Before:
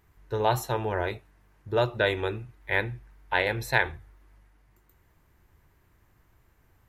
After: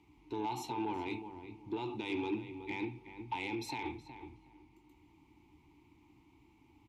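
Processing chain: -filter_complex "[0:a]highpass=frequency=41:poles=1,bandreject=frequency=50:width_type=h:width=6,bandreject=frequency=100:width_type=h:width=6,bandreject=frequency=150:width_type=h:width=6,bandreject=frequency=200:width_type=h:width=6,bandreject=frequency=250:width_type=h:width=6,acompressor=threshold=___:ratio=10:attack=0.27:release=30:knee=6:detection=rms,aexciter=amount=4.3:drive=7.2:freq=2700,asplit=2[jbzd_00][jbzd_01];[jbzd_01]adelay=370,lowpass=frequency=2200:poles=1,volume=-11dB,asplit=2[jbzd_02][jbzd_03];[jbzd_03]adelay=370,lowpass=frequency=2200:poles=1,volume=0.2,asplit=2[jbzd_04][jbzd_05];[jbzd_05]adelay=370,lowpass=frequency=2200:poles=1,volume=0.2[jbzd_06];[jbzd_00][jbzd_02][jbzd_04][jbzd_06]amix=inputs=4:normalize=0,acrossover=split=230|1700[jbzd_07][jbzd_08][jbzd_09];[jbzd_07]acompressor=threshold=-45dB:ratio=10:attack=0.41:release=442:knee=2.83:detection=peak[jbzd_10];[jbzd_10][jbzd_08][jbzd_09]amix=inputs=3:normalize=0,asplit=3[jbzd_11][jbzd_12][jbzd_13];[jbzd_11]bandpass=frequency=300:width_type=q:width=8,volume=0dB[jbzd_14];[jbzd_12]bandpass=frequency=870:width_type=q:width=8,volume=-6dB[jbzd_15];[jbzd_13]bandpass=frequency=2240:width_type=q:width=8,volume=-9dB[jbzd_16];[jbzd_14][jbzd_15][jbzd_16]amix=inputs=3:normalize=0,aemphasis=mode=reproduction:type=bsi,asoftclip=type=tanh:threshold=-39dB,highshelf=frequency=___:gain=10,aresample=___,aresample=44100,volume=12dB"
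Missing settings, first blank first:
-30dB, 8900, 32000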